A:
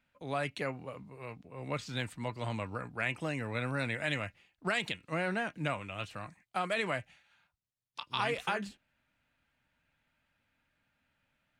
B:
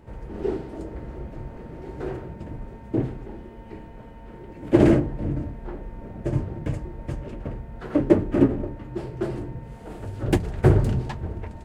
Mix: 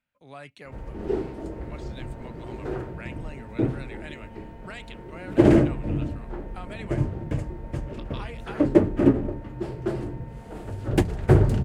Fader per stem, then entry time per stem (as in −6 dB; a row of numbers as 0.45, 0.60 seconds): −8.5, 0.0 decibels; 0.00, 0.65 seconds